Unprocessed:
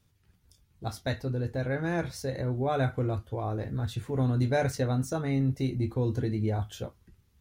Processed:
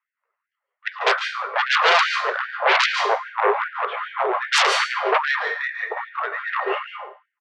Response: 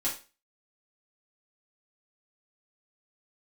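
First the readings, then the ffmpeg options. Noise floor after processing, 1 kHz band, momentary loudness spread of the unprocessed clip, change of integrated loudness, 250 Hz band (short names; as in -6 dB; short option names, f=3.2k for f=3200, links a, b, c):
-85 dBFS, +17.0 dB, 7 LU, +9.5 dB, under -10 dB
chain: -filter_complex "[0:a]highpass=f=280:w=0.5412,highpass=f=280:w=1.3066,agate=range=-26dB:threshold=-55dB:ratio=16:detection=peak,aecho=1:1:1.3:0.33,highpass=f=460:t=q:w=0.5412,highpass=f=460:t=q:w=1.307,lowpass=f=2.4k:t=q:w=0.5176,lowpass=f=2.4k:t=q:w=0.7071,lowpass=f=2.4k:t=q:w=1.932,afreqshift=-350,aeval=exprs='0.168*sin(PI/2*8.91*val(0)/0.168)':c=same,aecho=1:1:111:0.126,asplit=2[a][b];[1:a]atrim=start_sample=2205,asetrate=32634,aresample=44100,adelay=137[c];[b][c]afir=irnorm=-1:irlink=0,volume=-12.5dB[d];[a][d]amix=inputs=2:normalize=0,afftfilt=real='re*gte(b*sr/1024,360*pow(1500/360,0.5+0.5*sin(2*PI*2.5*pts/sr)))':imag='im*gte(b*sr/1024,360*pow(1500/360,0.5+0.5*sin(2*PI*2.5*pts/sr)))':win_size=1024:overlap=0.75,volume=3.5dB"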